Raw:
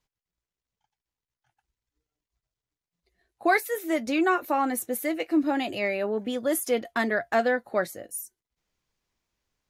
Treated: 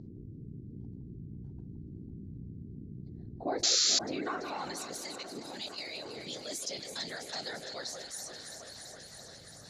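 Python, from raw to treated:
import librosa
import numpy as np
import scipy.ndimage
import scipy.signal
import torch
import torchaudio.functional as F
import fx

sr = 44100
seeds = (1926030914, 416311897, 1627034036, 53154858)

p1 = fx.add_hum(x, sr, base_hz=60, snr_db=21)
p2 = fx.echo_alternate(p1, sr, ms=167, hz=1500.0, feedback_pct=79, wet_db=-10)
p3 = fx.level_steps(p2, sr, step_db=10, at=(5.06, 6.17))
p4 = fx.whisperise(p3, sr, seeds[0])
p5 = fx.filter_sweep_bandpass(p4, sr, from_hz=500.0, to_hz=4800.0, start_s=3.55, end_s=4.95, q=0.91)
p6 = p5 + fx.echo_swing(p5, sr, ms=895, ratio=1.5, feedback_pct=44, wet_db=-20.5, dry=0)
p7 = fx.spec_paint(p6, sr, seeds[1], shape='noise', start_s=3.63, length_s=0.36, low_hz=1200.0, high_hz=7500.0, level_db=-19.0)
p8 = fx.curve_eq(p7, sr, hz=(120.0, 1500.0, 2900.0, 4200.0, 7000.0, 13000.0), db=(0, -18, -17, 0, -5, -24))
p9 = fx.env_flatten(p8, sr, amount_pct=50)
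y = F.gain(torch.from_numpy(p9), -3.0).numpy()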